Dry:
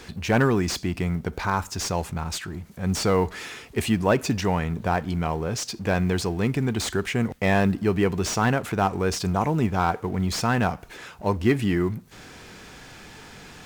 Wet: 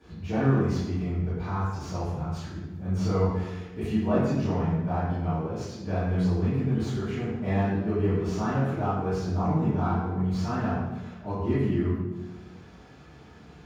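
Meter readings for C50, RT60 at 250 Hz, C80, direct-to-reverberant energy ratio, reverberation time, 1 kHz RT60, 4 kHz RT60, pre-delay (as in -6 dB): -1.0 dB, 1.5 s, 2.0 dB, -14.5 dB, 1.1 s, 1.0 s, 0.80 s, 3 ms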